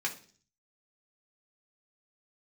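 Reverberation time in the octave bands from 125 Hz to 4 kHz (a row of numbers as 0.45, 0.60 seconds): 0.75, 0.60, 0.50, 0.40, 0.40, 0.55 seconds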